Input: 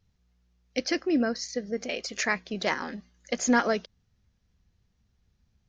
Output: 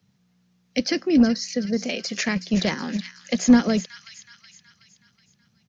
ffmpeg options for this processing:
-filter_complex "[0:a]acrossover=split=6000[s0][s1];[s1]acompressor=threshold=0.00398:ratio=4:attack=1:release=60[s2];[s0][s2]amix=inputs=2:normalize=0,lowshelf=f=240:t=q:w=1.5:g=8,acrossover=split=430|3000[s3][s4][s5];[s4]acompressor=threshold=0.01:ratio=3[s6];[s3][s6][s5]amix=inputs=3:normalize=0,acrossover=split=150|750|1400[s7][s8][s9][s10];[s7]acrusher=bits=5:mix=0:aa=0.5[s11];[s10]aecho=1:1:372|744|1116|1488|1860:0.316|0.158|0.0791|0.0395|0.0198[s12];[s11][s8][s9][s12]amix=inputs=4:normalize=0,volume=2.37"

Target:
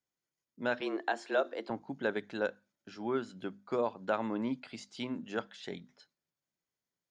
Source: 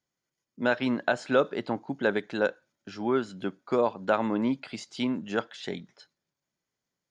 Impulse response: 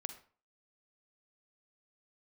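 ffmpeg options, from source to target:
-filter_complex "[0:a]bandreject=f=50:t=h:w=6,bandreject=f=100:t=h:w=6,bandreject=f=150:t=h:w=6,bandreject=f=200:t=h:w=6,bandreject=f=250:t=h:w=6,asettb=1/sr,asplit=3[s0][s1][s2];[s0]atrim=end=0.814[s3];[s1]atrim=start=0.81:end=1.7,asetpts=PTS-STARTPTS,afade=t=in:d=0.004:c=qsin,afade=t=out:st=0.886:d=0.004:c=qsin,afreqshift=99[s4];[s2]atrim=start=1.696[s5];[s3][s4]acrossfade=d=0.004:c1=hsin:c2=qsin[s6];[s6][s5]acrossfade=d=0.004:c1=qsin:c2=hsin,volume=0.447"

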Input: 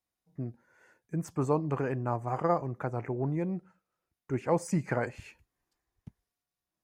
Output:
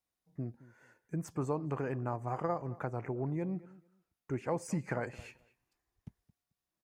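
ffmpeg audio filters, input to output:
-filter_complex "[0:a]acompressor=threshold=0.0251:ratio=2,asplit=2[s0][s1];[s1]adelay=219,lowpass=f=3100:p=1,volume=0.106,asplit=2[s2][s3];[s3]adelay=219,lowpass=f=3100:p=1,volume=0.17[s4];[s2][s4]amix=inputs=2:normalize=0[s5];[s0][s5]amix=inputs=2:normalize=0,volume=0.841"

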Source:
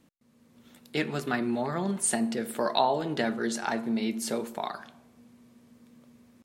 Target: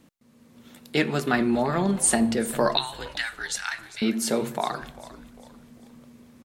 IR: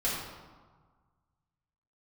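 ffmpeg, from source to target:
-filter_complex "[0:a]asettb=1/sr,asplit=3[s0][s1][s2];[s0]atrim=end=2.774[s3];[s1]atrim=start=2.77:end=4.02,asetpts=PTS-STARTPTS,afade=t=in:d=0.004:c=qsin,afade=t=out:st=1.246:d=0.004:c=qsin,highpass=f=1400:w=0.5412,highpass=f=1400:w=1.3066[s4];[s2]atrim=start=4.016[s5];[s3][s4]acrossfade=d=0.004:c1=hsin:c2=qsin[s6];[s6][s5]acrossfade=d=0.004:c1=qsin:c2=hsin,asplit=2[s7][s8];[s8]asplit=4[s9][s10][s11][s12];[s9]adelay=398,afreqshift=-89,volume=0.141[s13];[s10]adelay=796,afreqshift=-178,volume=0.061[s14];[s11]adelay=1194,afreqshift=-267,volume=0.026[s15];[s12]adelay=1592,afreqshift=-356,volume=0.0112[s16];[s13][s14][s15][s16]amix=inputs=4:normalize=0[s17];[s7][s17]amix=inputs=2:normalize=0,volume=2"

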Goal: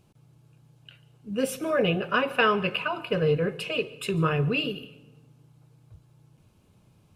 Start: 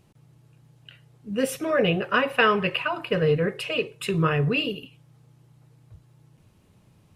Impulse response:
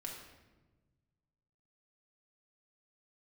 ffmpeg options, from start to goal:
-filter_complex "[0:a]bandreject=f=1900:w=6.6,asplit=2[s0][s1];[1:a]atrim=start_sample=2205,adelay=142[s2];[s1][s2]afir=irnorm=-1:irlink=0,volume=0.133[s3];[s0][s3]amix=inputs=2:normalize=0,volume=0.794"

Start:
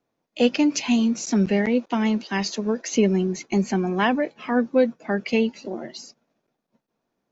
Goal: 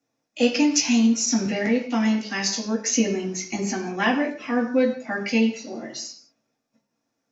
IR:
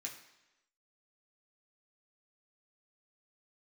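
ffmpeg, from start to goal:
-filter_complex "[0:a]equalizer=f=5400:t=o:w=0.4:g=11[s0];[1:a]atrim=start_sample=2205,afade=t=out:st=0.26:d=0.01,atrim=end_sample=11907[s1];[s0][s1]afir=irnorm=-1:irlink=0,volume=1.41"

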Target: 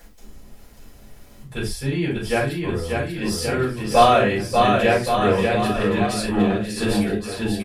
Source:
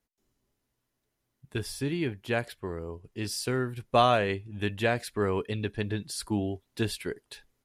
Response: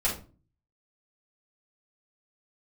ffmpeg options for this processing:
-filter_complex "[0:a]aecho=1:1:590|1121|1599|2029|2416:0.631|0.398|0.251|0.158|0.1,acompressor=mode=upward:threshold=0.0126:ratio=2.5[s0];[1:a]atrim=start_sample=2205,afade=t=out:st=0.16:d=0.01,atrim=end_sample=7497[s1];[s0][s1]afir=irnorm=-1:irlink=0,volume=0.841"

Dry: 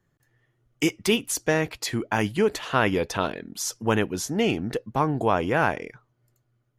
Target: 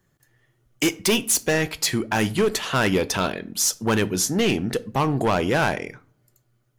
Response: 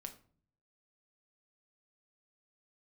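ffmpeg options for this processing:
-filter_complex "[0:a]highshelf=f=3900:g=7.5,volume=8.41,asoftclip=hard,volume=0.119,asplit=2[s0][s1];[1:a]atrim=start_sample=2205[s2];[s1][s2]afir=irnorm=-1:irlink=0,volume=0.944[s3];[s0][s3]amix=inputs=2:normalize=0"

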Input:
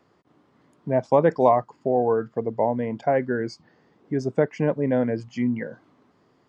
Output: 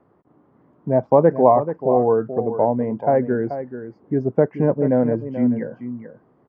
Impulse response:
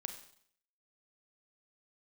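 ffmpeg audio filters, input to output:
-filter_complex "[0:a]lowpass=1100,asplit=2[s0][s1];[s1]aecho=0:1:433:0.282[s2];[s0][s2]amix=inputs=2:normalize=0,volume=1.68"

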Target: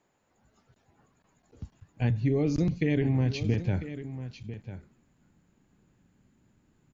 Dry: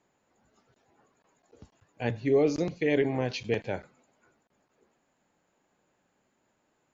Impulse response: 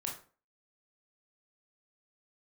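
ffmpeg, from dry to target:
-filter_complex "[0:a]asubboost=boost=10.5:cutoff=190,acompressor=threshold=0.0794:ratio=6,asplit=2[s0][s1];[s1]aecho=0:1:997:0.237[s2];[s0][s2]amix=inputs=2:normalize=0"

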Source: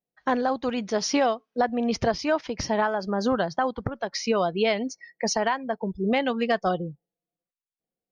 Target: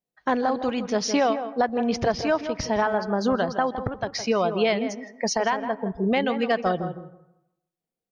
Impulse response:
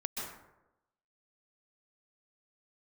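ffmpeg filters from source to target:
-filter_complex "[0:a]asplit=2[s0][s1];[s1]adelay=163,lowpass=f=1500:p=1,volume=0.355,asplit=2[s2][s3];[s3]adelay=163,lowpass=f=1500:p=1,volume=0.19,asplit=2[s4][s5];[s5]adelay=163,lowpass=f=1500:p=1,volume=0.19[s6];[s0][s2][s4][s6]amix=inputs=4:normalize=0,asplit=2[s7][s8];[1:a]atrim=start_sample=2205,lowpass=3800[s9];[s8][s9]afir=irnorm=-1:irlink=0,volume=0.119[s10];[s7][s10]amix=inputs=2:normalize=0"

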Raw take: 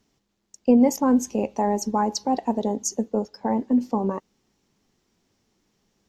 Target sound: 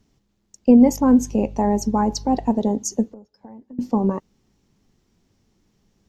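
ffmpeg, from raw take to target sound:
-filter_complex "[0:a]asettb=1/sr,asplit=3[s0][s1][s2];[s0]atrim=end=0.814[s3];[s1]atrim=start=0.81:end=2.51,asetpts=PTS-STARTPTS,afade=t=in:d=0.004:c=qsin,afade=t=out:st=1.696:d=0.004:c=qsin,aeval=exprs='val(0)+0.00562*(sin(2*PI*50*n/s)+sin(2*PI*2*50*n/s)/2+sin(2*PI*3*50*n/s)/3+sin(2*PI*4*50*n/s)/4+sin(2*PI*5*50*n/s)/5)':c=same[s4];[s2]atrim=start=2.506[s5];[s3][s4]acrossfade=d=0.004:c1=hsin:c2=qsin[s6];[s6][s5]acrossfade=d=0.004:c1=qsin:c2=hsin,lowshelf=f=210:g=12,asettb=1/sr,asplit=3[s7][s8][s9];[s7]atrim=end=3.114[s10];[s8]atrim=start=3.11:end=3.79,asetpts=PTS-STARTPTS,afade=t=in:d=0.004:c=qsin,afade=t=out:st=0.676:d=0.004:c=qsin,acompressor=threshold=0.00562:ratio=4[s11];[s9]atrim=start=3.786[s12];[s10][s11]acrossfade=d=0.004:c1=hsin:c2=qsin[s13];[s13][s12]acrossfade=d=0.004:c1=qsin:c2=hsin"

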